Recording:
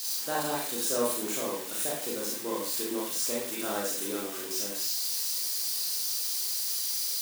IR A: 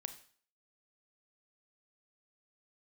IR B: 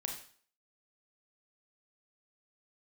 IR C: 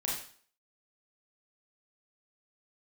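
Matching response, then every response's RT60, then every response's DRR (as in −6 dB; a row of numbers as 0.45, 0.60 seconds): C; 0.50, 0.50, 0.50 seconds; 9.0, 1.5, −4.5 decibels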